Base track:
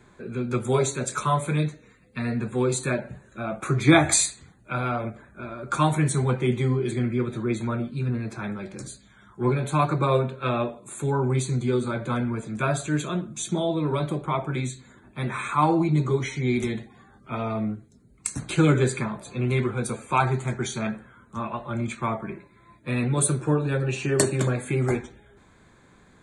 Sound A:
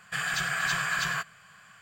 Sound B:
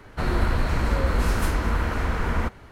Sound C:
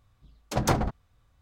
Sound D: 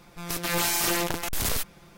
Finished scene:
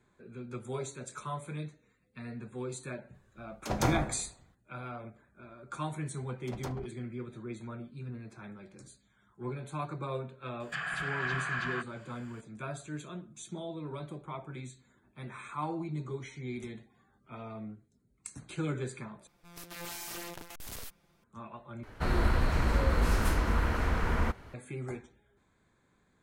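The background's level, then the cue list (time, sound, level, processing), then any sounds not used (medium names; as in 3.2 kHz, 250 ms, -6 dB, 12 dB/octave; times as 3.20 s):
base track -15 dB
3.14 s: add C -6 dB + plate-style reverb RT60 0.78 s, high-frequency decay 0.55×, DRR 4.5 dB
5.96 s: add C -17.5 dB
10.60 s: add A -4.5 dB + low-pass that closes with the level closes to 2.4 kHz, closed at -27.5 dBFS
19.27 s: replace with D -16.5 dB
21.83 s: replace with B -4.5 dB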